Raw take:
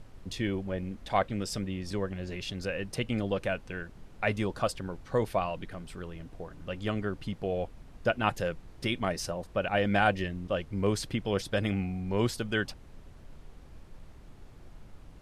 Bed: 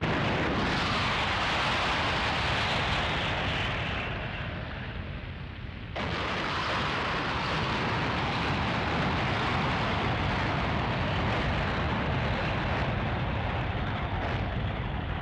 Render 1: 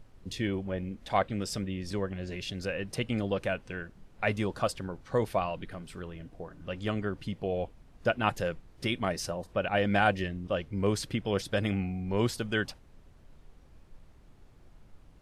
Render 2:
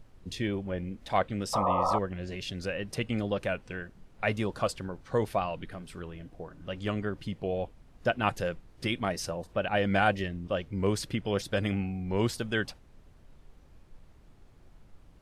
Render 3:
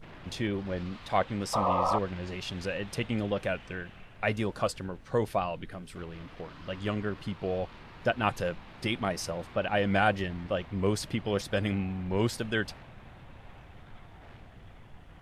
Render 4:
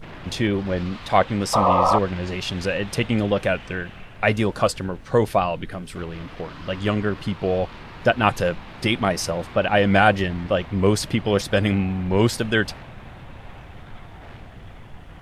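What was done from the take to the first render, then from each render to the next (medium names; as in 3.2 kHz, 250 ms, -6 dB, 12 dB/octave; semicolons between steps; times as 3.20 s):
noise print and reduce 6 dB
1.53–1.99 s: painted sound noise 480–1300 Hz -27 dBFS; wow and flutter 51 cents
add bed -21.5 dB
trim +9.5 dB; peak limiter -3 dBFS, peak gain reduction 1 dB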